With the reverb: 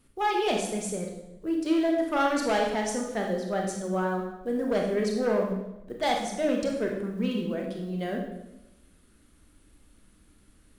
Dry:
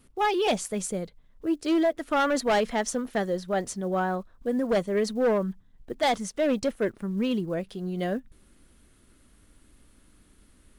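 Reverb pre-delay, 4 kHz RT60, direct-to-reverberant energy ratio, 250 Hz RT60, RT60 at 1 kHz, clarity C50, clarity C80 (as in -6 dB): 23 ms, 0.75 s, 0.5 dB, 1.1 s, 0.85 s, 3.5 dB, 6.5 dB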